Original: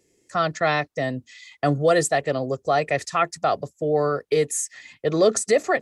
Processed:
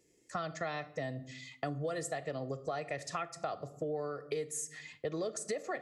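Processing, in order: on a send at -12 dB: reverb RT60 0.60 s, pre-delay 6 ms; on the sum: compressor 6:1, threshold -29 dBFS, peak gain reduction 16 dB; gain -5.5 dB

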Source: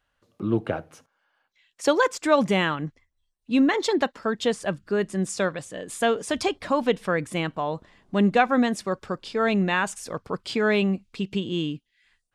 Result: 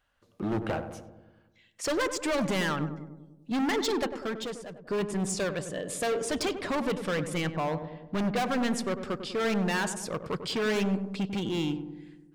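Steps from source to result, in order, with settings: 7.38–8.36 LPF 4300 Hz 24 dB/oct; overloaded stage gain 26 dB; 4.04–4.87 fade out; darkening echo 98 ms, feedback 65%, low-pass 1000 Hz, level -8 dB

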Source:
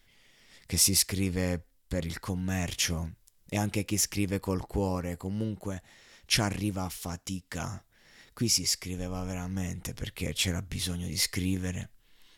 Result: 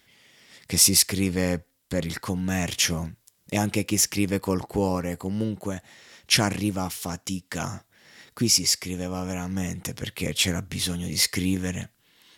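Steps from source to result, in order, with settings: HPF 110 Hz 12 dB/oct; gain +6 dB

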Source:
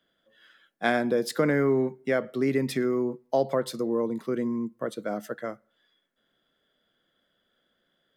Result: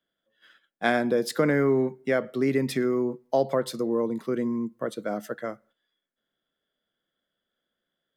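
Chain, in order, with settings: gate -58 dBFS, range -11 dB; gain +1 dB

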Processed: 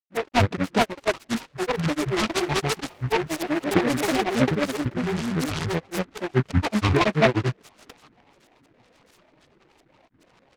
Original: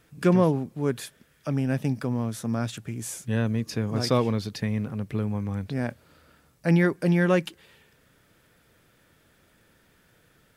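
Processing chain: rattling part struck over -32 dBFS, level -27 dBFS; low shelf 120 Hz -10.5 dB; comb 4.3 ms, depth 69%; LFO low-pass saw up 1.8 Hz 370–2600 Hz; grains, grains 21/s, spray 0.515 s, pitch spread up and down by 12 st; noise-modulated delay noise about 1300 Hz, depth 0.14 ms; gain +3.5 dB

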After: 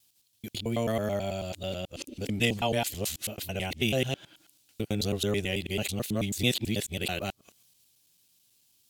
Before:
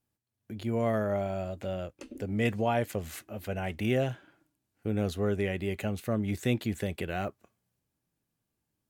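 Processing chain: local time reversal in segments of 0.109 s; resonant high shelf 2400 Hz +11.5 dB, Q 1.5; mismatched tape noise reduction encoder only

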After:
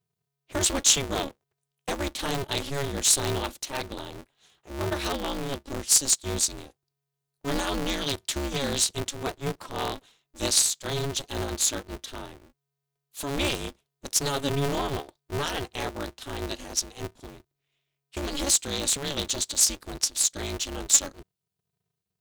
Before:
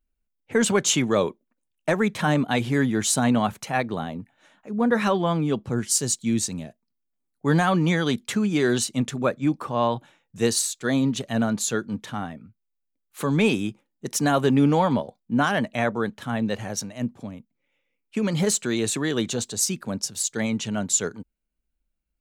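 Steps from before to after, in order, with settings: resonant high shelf 2700 Hz +10 dB, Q 1.5; polarity switched at an audio rate 140 Hz; gain -8 dB

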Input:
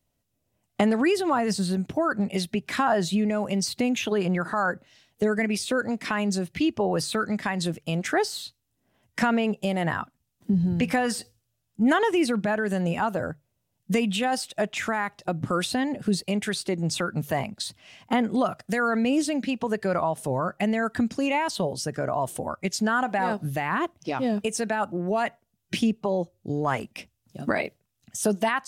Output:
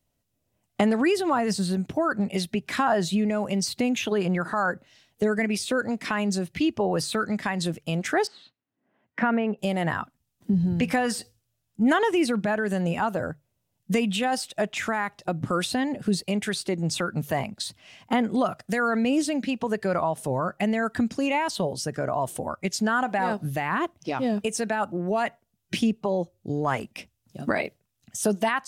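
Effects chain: 8.27–9.59 Chebyshev band-pass 220–1900 Hz, order 2

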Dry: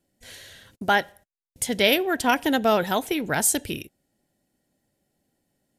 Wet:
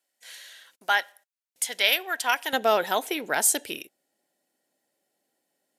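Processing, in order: HPF 960 Hz 12 dB/oct, from 2.53 s 430 Hz

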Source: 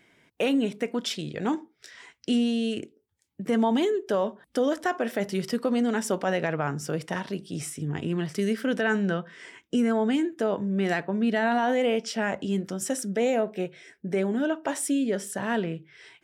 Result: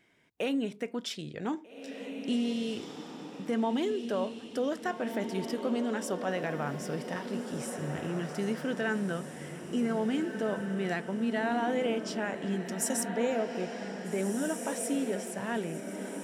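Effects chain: 12.63–13.08 high shelf 4500 Hz +10 dB; diffused feedback echo 1.683 s, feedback 43%, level -6.5 dB; gain -6.5 dB

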